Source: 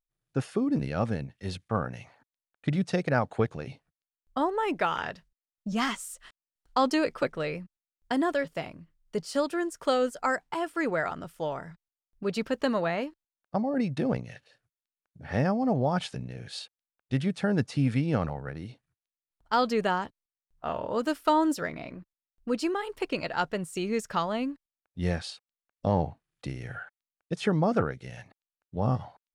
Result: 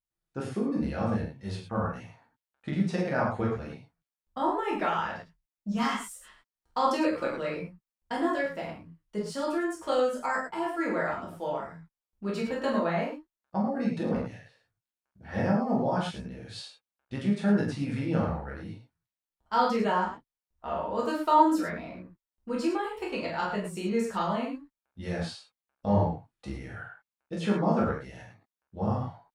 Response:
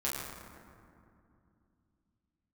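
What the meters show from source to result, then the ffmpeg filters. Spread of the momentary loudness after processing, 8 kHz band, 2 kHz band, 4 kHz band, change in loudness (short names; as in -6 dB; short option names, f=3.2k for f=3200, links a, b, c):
17 LU, -3.0 dB, -1.0 dB, -3.0 dB, 0.0 dB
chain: -filter_complex "[0:a]equalizer=f=920:t=o:w=0.34:g=3.5[a];[1:a]atrim=start_sample=2205,afade=t=out:st=0.18:d=0.01,atrim=end_sample=8379[b];[a][b]afir=irnorm=-1:irlink=0,volume=-5.5dB"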